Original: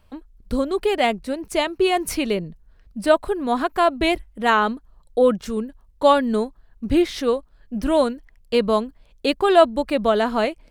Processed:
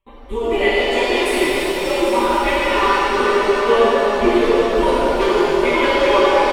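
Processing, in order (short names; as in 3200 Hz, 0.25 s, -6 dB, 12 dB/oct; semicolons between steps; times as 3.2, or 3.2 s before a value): repeated pitch sweeps -4 st, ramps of 0.873 s; low shelf 240 Hz -4.5 dB; fixed phaser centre 1000 Hz, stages 8; comb 5.1 ms, depth 72%; de-hum 157.1 Hz, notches 11; plain phase-vocoder stretch 0.61×; gate with hold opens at -48 dBFS; in parallel at +2.5 dB: compressor, threshold -30 dBFS, peak gain reduction 15 dB; on the sum: wavefolder -12.5 dBFS; high shelf 6400 Hz -10 dB; echo 0.794 s -10 dB; shimmer reverb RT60 3.4 s, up +7 st, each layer -8 dB, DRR -8.5 dB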